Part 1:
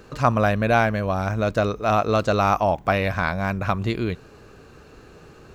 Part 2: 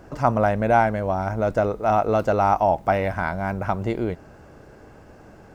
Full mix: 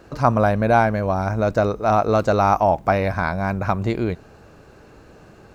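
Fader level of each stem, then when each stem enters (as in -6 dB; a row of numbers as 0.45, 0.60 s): -3.5, -2.5 dB; 0.00, 0.00 s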